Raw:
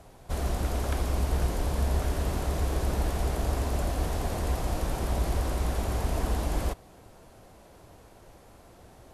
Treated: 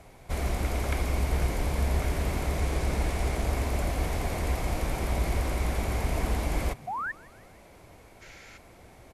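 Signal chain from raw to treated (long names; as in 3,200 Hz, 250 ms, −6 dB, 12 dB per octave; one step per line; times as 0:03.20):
0:02.58–0:03.45: variable-slope delta modulation 64 kbit/s
0:08.21–0:08.57: gain on a spectral selection 1,300–7,500 Hz +11 dB
parametric band 2,200 Hz +11 dB 0.29 octaves
0:06.87–0:07.12: sound drawn into the spectrogram rise 680–1,900 Hz −32 dBFS
echo with shifted repeats 161 ms, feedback 50%, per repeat +84 Hz, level −23 dB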